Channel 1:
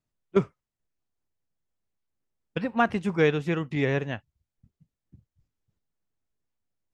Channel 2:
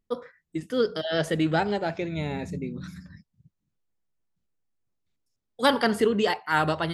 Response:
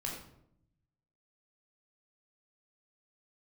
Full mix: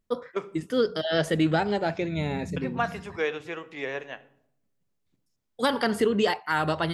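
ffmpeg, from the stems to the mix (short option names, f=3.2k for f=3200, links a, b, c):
-filter_complex "[0:a]highpass=460,volume=-4.5dB,asplit=2[a][b];[b]volume=-12dB[c];[1:a]volume=1.5dB[d];[2:a]atrim=start_sample=2205[e];[c][e]afir=irnorm=-1:irlink=0[f];[a][d][f]amix=inputs=3:normalize=0,alimiter=limit=-12.5dB:level=0:latency=1:release=214"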